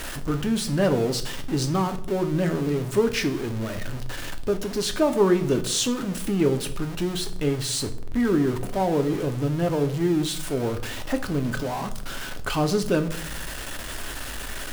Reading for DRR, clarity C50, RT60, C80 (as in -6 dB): 7.0 dB, 14.5 dB, 0.60 s, 18.0 dB